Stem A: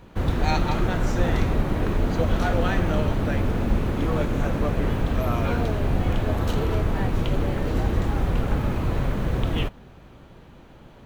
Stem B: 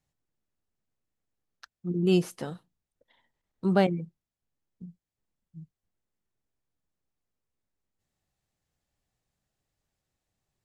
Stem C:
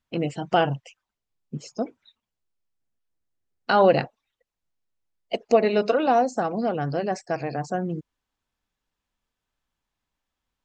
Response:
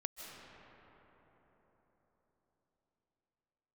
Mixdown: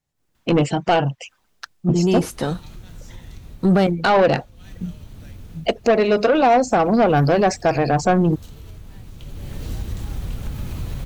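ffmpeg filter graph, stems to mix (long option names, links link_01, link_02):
-filter_complex "[0:a]acrossover=split=190|3000[link_01][link_02][link_03];[link_02]acompressor=threshold=-43dB:ratio=2.5[link_04];[link_01][link_04][link_03]amix=inputs=3:normalize=0,highshelf=frequency=3700:gain=9.5,acompressor=threshold=-35dB:ratio=3,adelay=1950,volume=-8dB,afade=type=in:start_time=9.16:duration=0.56:silence=0.281838[link_05];[1:a]alimiter=limit=-19dB:level=0:latency=1,volume=0dB[link_06];[2:a]adelay=350,volume=1.5dB[link_07];[link_05][link_06][link_07]amix=inputs=3:normalize=0,dynaudnorm=framelen=120:gausssize=3:maxgain=15.5dB,asoftclip=type=tanh:threshold=-9.5dB"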